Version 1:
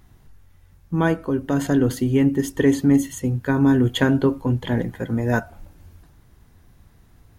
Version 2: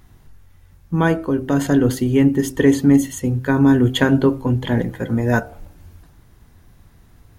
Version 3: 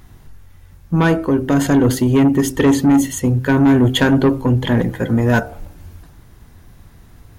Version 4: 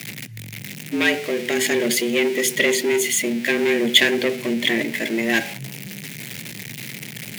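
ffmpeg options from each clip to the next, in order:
-af "bandreject=f=65.01:t=h:w=4,bandreject=f=130.02:t=h:w=4,bandreject=f=195.03:t=h:w=4,bandreject=f=260.04:t=h:w=4,bandreject=f=325.05:t=h:w=4,bandreject=f=390.06:t=h:w=4,bandreject=f=455.07:t=h:w=4,bandreject=f=520.08:t=h:w=4,bandreject=f=585.09:t=h:w=4,bandreject=f=650.1:t=h:w=4,bandreject=f=715.11:t=h:w=4,bandreject=f=780.12:t=h:w=4,bandreject=f=845.13:t=h:w=4,volume=3.5dB"
-af "asoftclip=type=tanh:threshold=-13dB,volume=5.5dB"
-af "aeval=exprs='val(0)+0.5*0.0531*sgn(val(0))':c=same,afreqshift=110,highshelf=f=1.6k:t=q:w=3:g=10.5,volume=-8.5dB"

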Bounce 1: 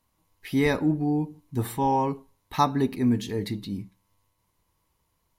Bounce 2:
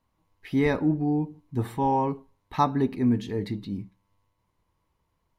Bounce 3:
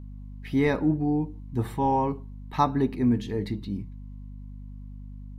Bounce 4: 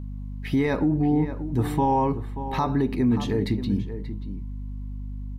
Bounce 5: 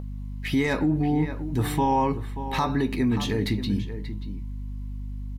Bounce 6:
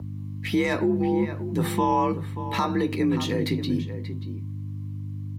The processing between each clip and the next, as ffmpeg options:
-af "lowpass=f=2.2k:p=1"
-af "aeval=exprs='val(0)+0.0112*(sin(2*PI*50*n/s)+sin(2*PI*2*50*n/s)/2+sin(2*PI*3*50*n/s)/3+sin(2*PI*4*50*n/s)/4+sin(2*PI*5*50*n/s)/5)':c=same"
-filter_complex "[0:a]alimiter=limit=-21dB:level=0:latency=1:release=74,asplit=2[a][b];[b]adelay=583.1,volume=-11dB,highshelf=f=4k:g=-13.1[c];[a][c]amix=inputs=2:normalize=0,volume=6.5dB"
-filter_complex "[0:a]acrossover=split=1600[a][b];[a]acompressor=mode=upward:threshold=-35dB:ratio=2.5[c];[b]aeval=exprs='0.0562*sin(PI/2*1.78*val(0)/0.0562)':c=same[d];[c][d]amix=inputs=2:normalize=0,asplit=2[e][f];[f]adelay=19,volume=-13.5dB[g];[e][g]amix=inputs=2:normalize=0,volume=-1.5dB"
-af "afreqshift=50"

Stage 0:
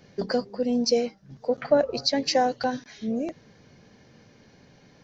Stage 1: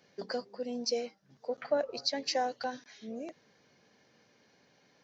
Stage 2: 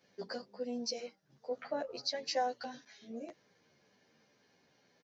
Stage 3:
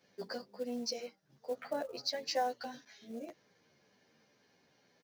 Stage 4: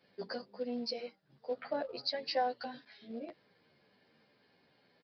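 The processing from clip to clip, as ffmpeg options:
-af "highpass=f=500:p=1,volume=-7dB"
-filter_complex "[0:a]asplit=2[a][b];[b]adelay=11.3,afreqshift=-2.1[c];[a][c]amix=inputs=2:normalize=1,volume=-1dB"
-af "acrusher=bits=6:mode=log:mix=0:aa=0.000001"
-af "aresample=11025,aresample=44100,volume=1dB"

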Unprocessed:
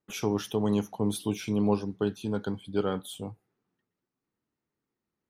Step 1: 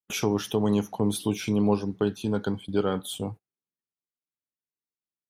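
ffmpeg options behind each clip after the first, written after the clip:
-filter_complex "[0:a]asplit=2[a][b];[b]acompressor=threshold=-34dB:ratio=6,volume=2dB[c];[a][c]amix=inputs=2:normalize=0,agate=range=-29dB:threshold=-38dB:ratio=16:detection=peak"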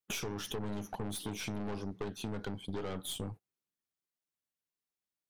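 -af "aeval=exprs='(tanh(31.6*val(0)+0.6)-tanh(0.6))/31.6':c=same,acompressor=threshold=-38dB:ratio=6,volume=3dB"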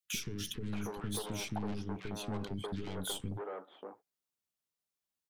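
-filter_complex "[0:a]acrossover=split=360|1800[a][b][c];[a]adelay=40[d];[b]adelay=630[e];[d][e][c]amix=inputs=3:normalize=0,volume=1.5dB"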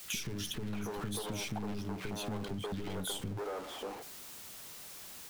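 -af "aeval=exprs='val(0)+0.5*0.00631*sgn(val(0))':c=same,acompressor=threshold=-40dB:ratio=2.5,volume=3.5dB"

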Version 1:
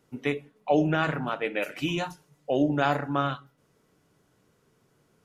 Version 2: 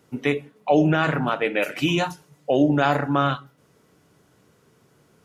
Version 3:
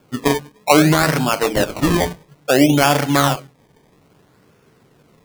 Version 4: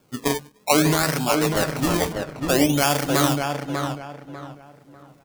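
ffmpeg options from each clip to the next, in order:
-filter_complex "[0:a]highpass=42,asplit=2[a][b];[b]alimiter=limit=-18.5dB:level=0:latency=1,volume=2.5dB[c];[a][c]amix=inputs=2:normalize=0"
-af "acrusher=samples=22:mix=1:aa=0.000001:lfo=1:lforange=22:lforate=0.6,volume=5.5dB"
-filter_complex "[0:a]bass=f=250:g=0,treble=f=4k:g=6,asplit=2[a][b];[b]adelay=595,lowpass=f=2.3k:p=1,volume=-4dB,asplit=2[c][d];[d]adelay=595,lowpass=f=2.3k:p=1,volume=0.31,asplit=2[e][f];[f]adelay=595,lowpass=f=2.3k:p=1,volume=0.31,asplit=2[g][h];[h]adelay=595,lowpass=f=2.3k:p=1,volume=0.31[i];[c][e][g][i]amix=inputs=4:normalize=0[j];[a][j]amix=inputs=2:normalize=0,volume=-6.5dB"

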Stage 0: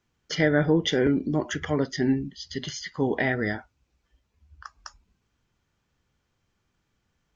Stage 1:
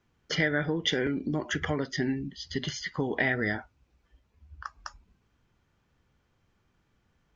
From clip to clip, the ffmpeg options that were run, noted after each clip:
-filter_complex "[0:a]highshelf=f=4k:g=-9.5,acrossover=split=1600[a][b];[a]acompressor=threshold=-31dB:ratio=6[c];[c][b]amix=inputs=2:normalize=0,volume=4dB"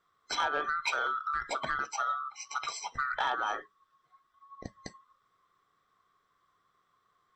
-af "afftfilt=real='real(if(lt(b,960),b+48*(1-2*mod(floor(b/48),2)),b),0)':imag='imag(if(lt(b,960),b+48*(1-2*mod(floor(b/48),2)),b),0)':win_size=2048:overlap=0.75,asoftclip=type=tanh:threshold=-17.5dB,volume=-2.5dB"

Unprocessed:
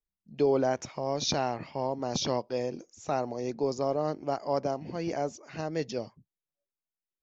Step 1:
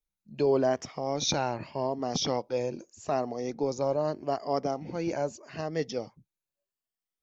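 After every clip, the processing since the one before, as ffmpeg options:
-af "afftfilt=real='re*pow(10,7/40*sin(2*PI*(1.4*log(max(b,1)*sr/1024/100)/log(2)-(0.82)*(pts-256)/sr)))':imag='im*pow(10,7/40*sin(2*PI*(1.4*log(max(b,1)*sr/1024/100)/log(2)-(0.82)*(pts-256)/sr)))':win_size=1024:overlap=0.75"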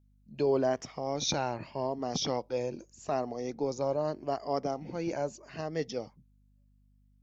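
-af "aeval=exprs='val(0)+0.000891*(sin(2*PI*50*n/s)+sin(2*PI*2*50*n/s)/2+sin(2*PI*3*50*n/s)/3+sin(2*PI*4*50*n/s)/4+sin(2*PI*5*50*n/s)/5)':c=same,volume=-2.5dB"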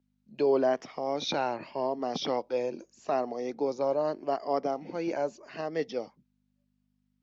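-filter_complex "[0:a]acrossover=split=200 6100:gain=0.112 1 0.2[a][b][c];[a][b][c]amix=inputs=3:normalize=0,acrossover=split=4900[d][e];[e]acompressor=threshold=-60dB:ratio=4:attack=1:release=60[f];[d][f]amix=inputs=2:normalize=0,volume=3dB"

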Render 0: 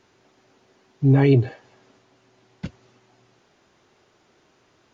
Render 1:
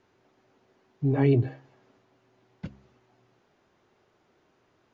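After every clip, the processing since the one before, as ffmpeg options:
-af "highshelf=f=3.3k:g=-10,bandreject=f=67.41:t=h:w=4,bandreject=f=134.82:t=h:w=4,bandreject=f=202.23:t=h:w=4,bandreject=f=269.64:t=h:w=4,bandreject=f=337.05:t=h:w=4,volume=-5dB"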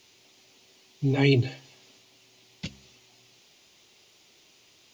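-af "aexciter=amount=5:drive=9.1:freq=2.3k"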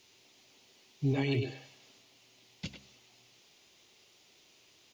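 -filter_complex "[0:a]asplit=2[a][b];[b]adelay=100,highpass=300,lowpass=3.4k,asoftclip=type=hard:threshold=-16.5dB,volume=-6dB[c];[a][c]amix=inputs=2:normalize=0,alimiter=limit=-17dB:level=0:latency=1:release=241,volume=-4.5dB"

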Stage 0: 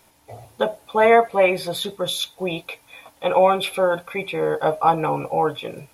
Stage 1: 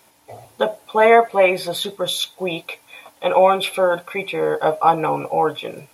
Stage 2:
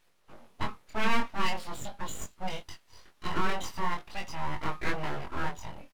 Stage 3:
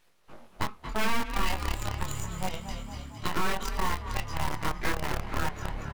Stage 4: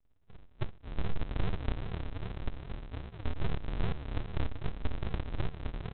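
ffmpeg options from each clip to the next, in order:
-af "highpass=f=190:p=1,volume=2.5dB"
-af "firequalizer=gain_entry='entry(360,0);entry(690,-8);entry(1500,-3);entry(9900,-14)':delay=0.05:min_phase=1,aeval=exprs='abs(val(0))':c=same,flanger=delay=20:depth=4.5:speed=0.43,volume=-4dB"
-filter_complex "[0:a]asplit=9[a][b][c][d][e][f][g][h][i];[b]adelay=230,afreqshift=35,volume=-9dB[j];[c]adelay=460,afreqshift=70,volume=-13dB[k];[d]adelay=690,afreqshift=105,volume=-17dB[l];[e]adelay=920,afreqshift=140,volume=-21dB[m];[f]adelay=1150,afreqshift=175,volume=-25.1dB[n];[g]adelay=1380,afreqshift=210,volume=-29.1dB[o];[h]adelay=1610,afreqshift=245,volume=-33.1dB[p];[i]adelay=1840,afreqshift=280,volume=-37.1dB[q];[a][j][k][l][m][n][o][p][q]amix=inputs=9:normalize=0,asplit=2[r][s];[s]acrusher=bits=3:mix=0:aa=0.000001,volume=-5.5dB[t];[r][t]amix=inputs=2:normalize=0,acompressor=threshold=-31dB:ratio=2,volume=2.5dB"
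-af "flanger=delay=1.3:depth=1:regen=-70:speed=0.39:shape=sinusoidal,aresample=8000,acrusher=samples=37:mix=1:aa=0.000001:lfo=1:lforange=22.2:lforate=2.5,aresample=44100,volume=1dB"

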